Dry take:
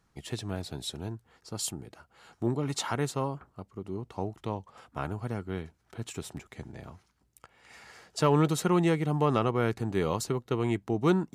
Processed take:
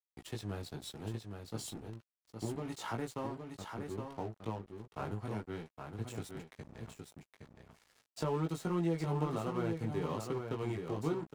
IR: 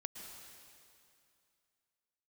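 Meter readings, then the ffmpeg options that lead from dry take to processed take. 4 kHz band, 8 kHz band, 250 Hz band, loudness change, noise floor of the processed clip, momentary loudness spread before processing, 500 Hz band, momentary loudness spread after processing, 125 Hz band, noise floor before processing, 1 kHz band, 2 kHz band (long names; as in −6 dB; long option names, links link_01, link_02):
−10.5 dB, −12.0 dB, −8.5 dB, −9.0 dB, below −85 dBFS, 19 LU, −8.5 dB, 15 LU, −7.5 dB, −71 dBFS, −9.0 dB, −9.5 dB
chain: -filter_complex "[0:a]agate=range=-33dB:threshold=-53dB:ratio=3:detection=peak,acrossover=split=190|1000[link_01][link_02][link_03];[link_03]alimiter=level_in=6dB:limit=-24dB:level=0:latency=1:release=17,volume=-6dB[link_04];[link_01][link_02][link_04]amix=inputs=3:normalize=0,acompressor=threshold=-32dB:ratio=2,flanger=delay=17.5:depth=2.1:speed=0.69,aeval=exprs='sgn(val(0))*max(abs(val(0))-0.00299,0)':channel_layout=same,asplit=2[link_05][link_06];[link_06]aecho=0:1:816:0.501[link_07];[link_05][link_07]amix=inputs=2:normalize=0"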